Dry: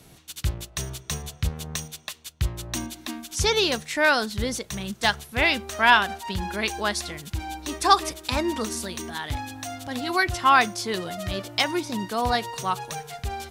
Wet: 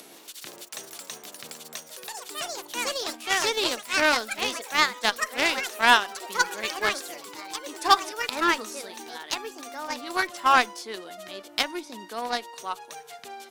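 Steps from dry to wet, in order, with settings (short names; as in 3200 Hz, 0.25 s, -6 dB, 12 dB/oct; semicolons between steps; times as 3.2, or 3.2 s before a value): HPF 260 Hz 24 dB/oct; echoes that change speed 0.12 s, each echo +4 st, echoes 3; upward compressor, threshold -28 dBFS; added harmonics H 7 -21 dB, 8 -43 dB, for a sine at -1.5 dBFS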